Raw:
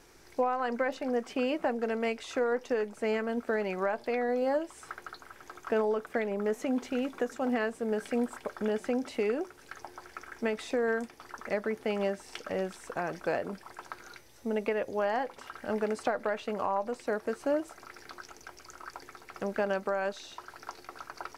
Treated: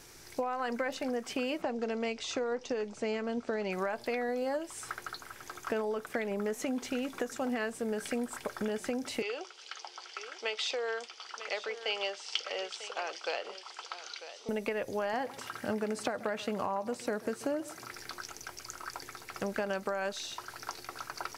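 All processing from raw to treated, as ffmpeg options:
ffmpeg -i in.wav -filter_complex "[0:a]asettb=1/sr,asplit=3[link_01][link_02][link_03];[link_01]atrim=end=1.624[link_04];[link_02]atrim=start=1.62:end=3.72,asetpts=PTS-STARTPTS,afade=type=in:duration=0.004:curve=qsin,afade=type=out:start_time=2.096:duration=0.004:curve=qsin,lowpass=frequency=6900:width=0.5412,lowpass=frequency=6900:width=1.3066,equalizer=frequency=1700:width=1.7:gain=-5.5[link_05];[link_03]atrim=start=3.716[link_06];[link_04][link_05]acrossfade=duration=0.004:curve1=hsin:curve2=qsin[link_07];[link_07][link_06]acrossfade=duration=0.004:curve1=qsin:curve2=hsin,asettb=1/sr,asplit=3[link_08][link_09][link_10];[link_08]atrim=end=9.224[link_11];[link_09]atrim=start=9.22:end=14.49,asetpts=PTS-STARTPTS,afade=type=in:duration=0.004:curve=qsin,afade=type=out:start_time=5.266:duration=0.004:curve=qsin,highpass=frequency=490:width=0.5412,highpass=frequency=490:width=1.3066,equalizer=frequency=620:width_type=q:width=4:gain=-6,equalizer=frequency=1000:width_type=q:width=4:gain=-3,equalizer=frequency=1700:width_type=q:width=4:gain=-8,equalizer=frequency=3100:width_type=q:width=4:gain=10,equalizer=frequency=4700:width_type=q:width=4:gain=5,lowpass=frequency=6500:width=0.5412,lowpass=frequency=6500:width=1.3066,aecho=1:1:945:0.2,atrim=end_sample=232407[link_12];[link_10]atrim=start=14.486[link_13];[link_11][link_12]acrossfade=duration=0.004:curve1=hsin:curve2=qsin[link_14];[link_14][link_13]acrossfade=duration=0.004:curve1=qsin:curve2=hsin,asettb=1/sr,asplit=3[link_15][link_16][link_17];[link_15]atrim=end=15.134[link_18];[link_16]atrim=start=15.13:end=17.94,asetpts=PTS-STARTPTS,afade=type=in:duration=0.004:curve=qsin,afade=type=out:start_time=2.806:duration=0.004:curve=qsin,highpass=120,lowshelf=frequency=260:gain=8,aecho=1:1:134:0.0841,atrim=end_sample=123921[link_19];[link_17]atrim=start=17.936[link_20];[link_18][link_19]acrossfade=duration=0.004:curve1=hsin:curve2=qsin[link_21];[link_21][link_20]acrossfade=duration=0.004:curve1=qsin:curve2=hsin,equalizer=frequency=120:width=1.5:gain=6.5,acompressor=threshold=-31dB:ratio=4,highshelf=frequency=2500:gain=9.5" out.wav

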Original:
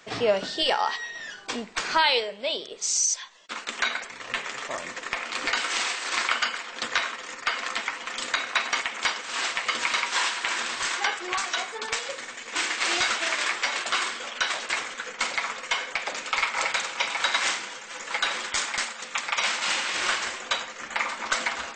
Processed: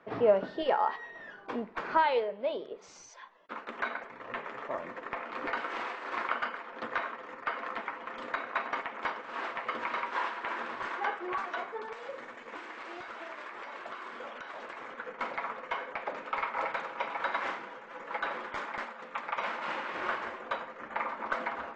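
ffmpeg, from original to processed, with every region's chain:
ffmpeg -i in.wav -filter_complex "[0:a]asettb=1/sr,asplit=3[link_01][link_02][link_03];[link_01]atrim=end=11.774[link_04];[link_02]atrim=start=11.77:end=14.91,asetpts=PTS-STARTPTS,afade=type=in:duration=0.004:curve=qsin,afade=type=out:start_time=3.136:duration=0.004:curve=qsin,acompressor=threshold=-31dB:ratio=12:attack=3.2:release=140:knee=1:detection=peak,highshelf=frequency=6100:gain=9.5[link_05];[link_03]atrim=start=14.906[link_06];[link_04][link_05]acrossfade=duration=0.004:curve1=hsin:curve2=qsin[link_07];[link_07][link_06]acrossfade=duration=0.004:curve1=qsin:curve2=hsin,lowpass=1100,lowshelf=frequency=110:gain=-9.5,bandreject=frequency=750:width=17" out.wav

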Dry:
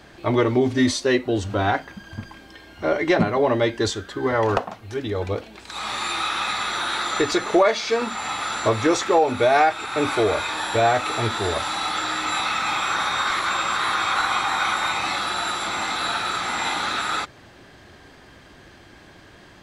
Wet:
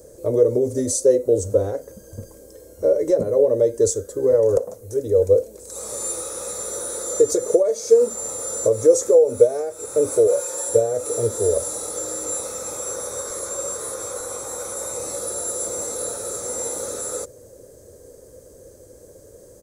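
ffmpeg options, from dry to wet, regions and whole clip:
ffmpeg -i in.wav -filter_complex "[0:a]asettb=1/sr,asplit=3[link_01][link_02][link_03];[link_01]atrim=end=10.274[link_04];[link_02]atrim=start=10.27:end=10.69,asetpts=PTS-STARTPTS,afade=type=in:duration=0.004:curve=qsin,afade=type=out:start_time=0.416:duration=0.004:curve=qsin,highpass=120,equalizer=frequency=240:width_type=o:width=1.3:gain=-10,aecho=1:1:5.6:0.84,atrim=end_sample=18522[link_05];[link_03]atrim=start=10.686[link_06];[link_04][link_05]acrossfade=duration=0.004:curve1=hsin:curve2=qsin[link_07];[link_07][link_06]acrossfade=duration=0.004:curve1=qsin:curve2=hsin,equalizer=frequency=910:width=0.66:gain=7.5,acompressor=threshold=-15dB:ratio=5,firequalizer=gain_entry='entry(100,0);entry(170,-7);entry(350,-4);entry(500,13);entry(740,-21);entry(2900,-27);entry(6400,8);entry(9200,15)':delay=0.05:min_phase=1" out.wav

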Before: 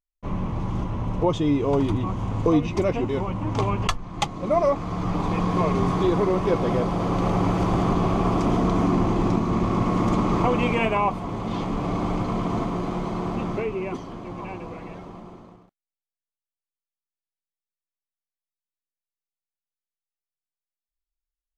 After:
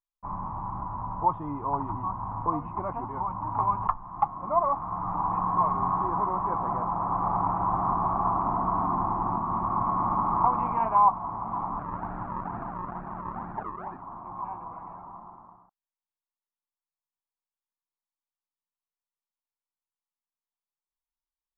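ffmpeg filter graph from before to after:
ffmpeg -i in.wav -filter_complex "[0:a]asettb=1/sr,asplit=3[link_01][link_02][link_03];[link_01]atrim=end=11.794[link_04];[link_02]atrim=start=11.79:end=14.02,asetpts=PTS-STARTPTS,afade=type=in:duration=0.004:curve=qsin,afade=type=out:start_time=2.226:duration=0.004:curve=qsin,equalizer=frequency=1000:width_type=o:width=0.54:gain=-12,acrusher=samples=41:mix=1:aa=0.000001:lfo=1:lforange=41:lforate=2.2[link_05];[link_03]atrim=start=14.016[link_06];[link_04][link_05]acrossfade=duration=0.004:curve1=hsin:curve2=qsin[link_07];[link_07][link_06]acrossfade=duration=0.004:curve1=qsin:curve2=hsin,lowpass=frequency=1100:width=0.5412,lowpass=frequency=1100:width=1.3066,lowshelf=frequency=670:width_type=q:width=3:gain=-11.5" out.wav

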